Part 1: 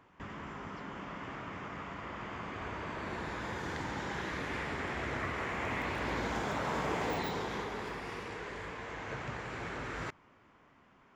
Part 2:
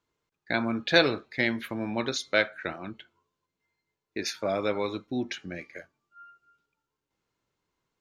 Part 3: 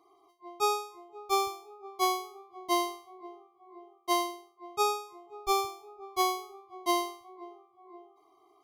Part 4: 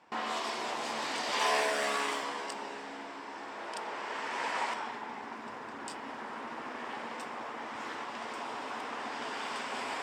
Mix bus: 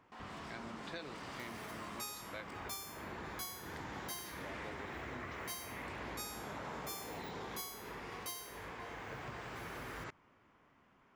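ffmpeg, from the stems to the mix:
ffmpeg -i stem1.wav -i stem2.wav -i stem3.wav -i stem4.wav -filter_complex "[0:a]volume=-5dB[link_01];[1:a]volume=-20dB[link_02];[2:a]aderivative,acompressor=mode=upward:threshold=-44dB:ratio=2.5,adelay=1400,volume=2.5dB[link_03];[3:a]volume=32dB,asoftclip=hard,volume=-32dB,volume=-16dB[link_04];[link_01][link_02][link_03][link_04]amix=inputs=4:normalize=0,acompressor=threshold=-41dB:ratio=6" out.wav

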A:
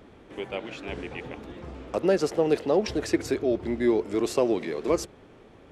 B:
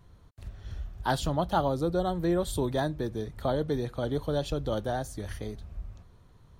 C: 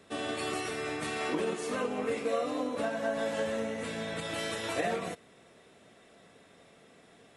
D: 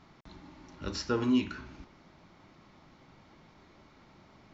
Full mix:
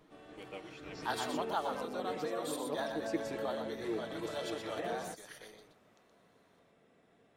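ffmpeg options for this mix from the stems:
ffmpeg -i stem1.wav -i stem2.wav -i stem3.wav -i stem4.wav -filter_complex "[0:a]aecho=1:1:6.4:0.94,volume=-16dB[link_01];[1:a]highpass=770,volume=-5.5dB,asplit=3[link_02][link_03][link_04];[link_03]volume=-6dB[link_05];[2:a]highshelf=frequency=2800:gain=-11,volume=-8dB,afade=type=in:start_time=0.85:duration=0.3:silence=0.281838[link_06];[3:a]volume=-17.5dB[link_07];[link_04]apad=whole_len=252471[link_08];[link_01][link_08]sidechaincompress=threshold=-49dB:ratio=8:attack=16:release=134[link_09];[link_05]aecho=0:1:122:1[link_10];[link_09][link_02][link_06][link_07][link_10]amix=inputs=5:normalize=0" out.wav

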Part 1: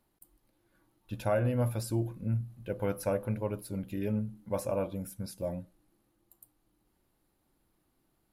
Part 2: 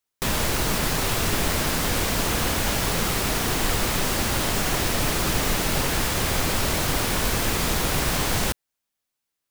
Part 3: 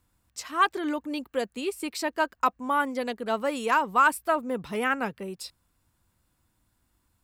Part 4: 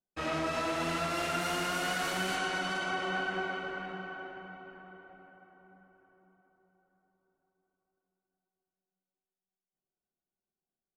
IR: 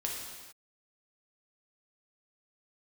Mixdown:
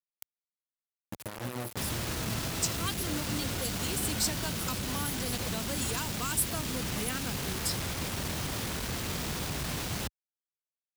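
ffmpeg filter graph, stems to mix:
-filter_complex "[0:a]acompressor=threshold=-32dB:ratio=5,aexciter=amount=1.3:drive=9.4:freq=4900,volume=-3.5dB,asplit=2[link_01][link_02];[1:a]aemphasis=mode=reproduction:type=50kf,alimiter=limit=-22dB:level=0:latency=1:release=16,adelay=1550,volume=-1.5dB[link_03];[2:a]bass=frequency=250:gain=-1,treble=frequency=4000:gain=13,adelay=2250,volume=-3.5dB[link_04];[3:a]adelay=1750,volume=1dB[link_05];[link_02]apad=whole_len=560613[link_06];[link_05][link_06]sidechaincompress=threshold=-43dB:ratio=8:attack=16:release=1130[link_07];[link_01][link_03][link_04][link_07]amix=inputs=4:normalize=0,acrossover=split=270|3000[link_08][link_09][link_10];[link_09]acompressor=threshold=-41dB:ratio=4[link_11];[link_08][link_11][link_10]amix=inputs=3:normalize=0,acrusher=bits=5:mix=0:aa=0.000001,highpass=61"

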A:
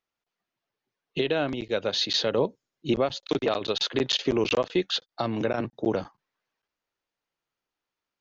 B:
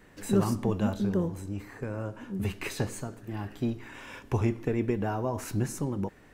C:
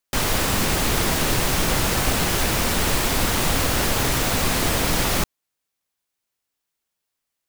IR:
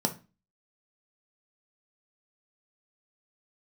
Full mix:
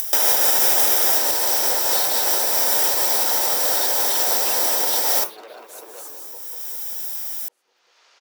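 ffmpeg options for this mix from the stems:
-filter_complex "[0:a]lowpass=frequency=5900:width=0.5412,lowpass=frequency=5900:width=1.3066,acompressor=threshold=-28dB:ratio=6,asoftclip=type=tanh:threshold=-31.5dB,volume=1dB,asplit=3[link_01][link_02][link_03];[link_02]volume=-11dB[link_04];[1:a]adelay=300,volume=-10.5dB,asplit=2[link_05][link_06];[link_06]volume=-6dB[link_07];[2:a]alimiter=limit=-16dB:level=0:latency=1:release=275,acompressor=mode=upward:threshold=-29dB:ratio=2.5,volume=-3dB,asplit=2[link_08][link_09];[link_09]volume=-3dB[link_10];[link_03]apad=whole_len=329993[link_11];[link_08][link_11]sidechaincompress=threshold=-42dB:ratio=8:attack=16:release=756[link_12];[link_01][link_05]amix=inputs=2:normalize=0,alimiter=level_in=7dB:limit=-24dB:level=0:latency=1,volume=-7dB,volume=0dB[link_13];[3:a]atrim=start_sample=2205[link_14];[link_10][link_14]afir=irnorm=-1:irlink=0[link_15];[link_04][link_07]amix=inputs=2:normalize=0,aecho=0:1:192|384|576|768|960|1152|1344|1536:1|0.53|0.281|0.149|0.0789|0.0418|0.0222|0.0117[link_16];[link_12][link_13][link_15][link_16]amix=inputs=4:normalize=0,acompressor=mode=upward:threshold=-33dB:ratio=2.5,highpass=frequency=460:width=0.5412,highpass=frequency=460:width=1.3066,aemphasis=mode=production:type=50fm"

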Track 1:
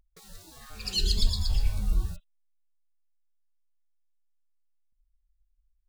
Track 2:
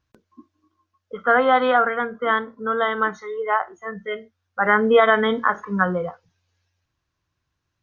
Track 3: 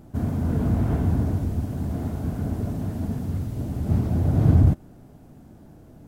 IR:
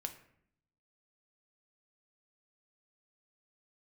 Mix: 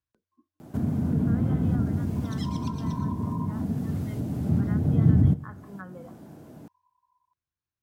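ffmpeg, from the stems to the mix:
-filter_complex "[0:a]aeval=exprs='val(0)*sin(2*PI*1000*n/s)':channel_layout=same,adelay=1450,volume=-1dB[link_01];[1:a]volume=-18dB[link_02];[2:a]highpass=140,adelay=600,volume=1dB,asplit=2[link_03][link_04];[link_04]volume=-6.5dB[link_05];[3:a]atrim=start_sample=2205[link_06];[link_05][link_06]afir=irnorm=-1:irlink=0[link_07];[link_01][link_02][link_03][link_07]amix=inputs=4:normalize=0,acrossover=split=270[link_08][link_09];[link_09]acompressor=threshold=-40dB:ratio=5[link_10];[link_08][link_10]amix=inputs=2:normalize=0"

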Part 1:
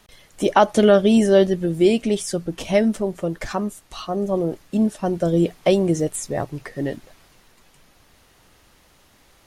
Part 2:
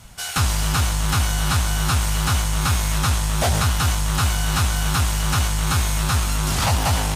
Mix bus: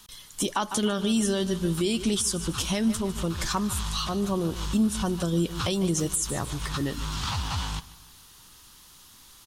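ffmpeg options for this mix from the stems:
ffmpeg -i stem1.wav -i stem2.wav -filter_complex "[0:a]volume=-1.5dB,asplit=3[link_01][link_02][link_03];[link_02]volume=-16.5dB[link_04];[1:a]lowpass=3700,alimiter=limit=-16.5dB:level=0:latency=1:release=114,adelay=650,volume=-6dB,asplit=2[link_05][link_06];[link_06]volume=-19.5dB[link_07];[link_03]apad=whole_len=344260[link_08];[link_05][link_08]sidechaincompress=threshold=-36dB:ratio=8:attack=6.7:release=103[link_09];[link_04][link_07]amix=inputs=2:normalize=0,aecho=0:1:150|300|450|600|750|900:1|0.44|0.194|0.0852|0.0375|0.0165[link_10];[link_01][link_09][link_10]amix=inputs=3:normalize=0,firequalizer=gain_entry='entry(190,0);entry(630,-11);entry(990,4);entry(2100,-3);entry(3300,8);entry(10000,11)':delay=0.05:min_phase=1,alimiter=limit=-15.5dB:level=0:latency=1:release=149" out.wav

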